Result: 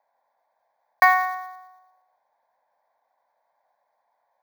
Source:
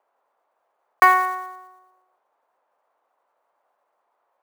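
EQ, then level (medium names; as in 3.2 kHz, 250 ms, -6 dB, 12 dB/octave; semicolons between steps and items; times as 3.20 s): static phaser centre 1.9 kHz, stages 8; +1.5 dB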